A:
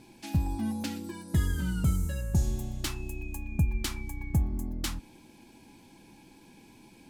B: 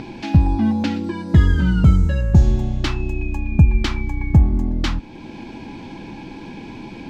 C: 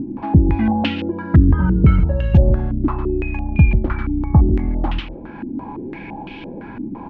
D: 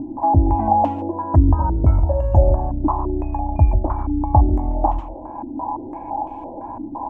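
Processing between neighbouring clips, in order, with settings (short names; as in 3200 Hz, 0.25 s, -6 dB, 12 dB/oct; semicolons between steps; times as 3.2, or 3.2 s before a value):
in parallel at +1 dB: upward compressor, threshold -33 dBFS; on the sum: requantised 10-bit, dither none; air absorption 200 m; gain +7.5 dB
feedback echo 0.143 s, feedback 24%, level -12 dB; stepped low-pass 5.9 Hz 280–2900 Hz
EQ curve 100 Hz 0 dB, 180 Hz -17 dB, 300 Hz +2 dB, 430 Hz -8 dB, 630 Hz +12 dB, 980 Hz +11 dB, 1400 Hz -14 dB, 3000 Hz -25 dB, 4500 Hz -23 dB, 7400 Hz +4 dB; gain -1 dB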